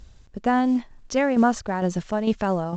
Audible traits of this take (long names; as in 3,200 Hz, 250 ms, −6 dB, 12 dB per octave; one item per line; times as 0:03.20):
tremolo saw down 2.2 Hz, depth 55%
mu-law